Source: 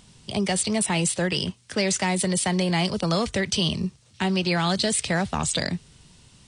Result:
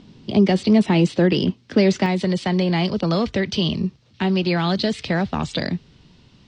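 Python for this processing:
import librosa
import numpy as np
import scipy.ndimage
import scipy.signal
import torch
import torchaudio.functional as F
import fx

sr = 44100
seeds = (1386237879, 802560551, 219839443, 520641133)

y = scipy.signal.sosfilt(scipy.signal.butter(4, 4900.0, 'lowpass', fs=sr, output='sos'), x)
y = fx.peak_eq(y, sr, hz=280.0, db=fx.steps((0.0, 14.5), (2.06, 6.5)), octaves=1.6)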